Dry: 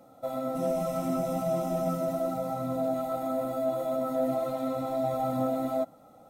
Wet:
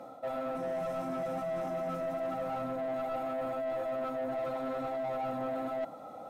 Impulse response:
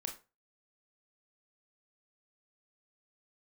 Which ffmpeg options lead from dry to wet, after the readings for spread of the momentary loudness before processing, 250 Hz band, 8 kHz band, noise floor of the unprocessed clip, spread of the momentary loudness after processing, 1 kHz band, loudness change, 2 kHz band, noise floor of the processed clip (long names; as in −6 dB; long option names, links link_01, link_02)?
3 LU, −8.5 dB, below −10 dB, −55 dBFS, 1 LU, −3.5 dB, −5.0 dB, +5.0 dB, −47 dBFS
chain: -filter_complex "[0:a]areverse,acompressor=threshold=-37dB:ratio=6,areverse,asplit=2[link_01][link_02];[link_02]highpass=frequency=720:poles=1,volume=17dB,asoftclip=type=tanh:threshold=-29.5dB[link_03];[link_01][link_03]amix=inputs=2:normalize=0,lowpass=frequency=1500:poles=1,volume=-6dB,volume=2dB"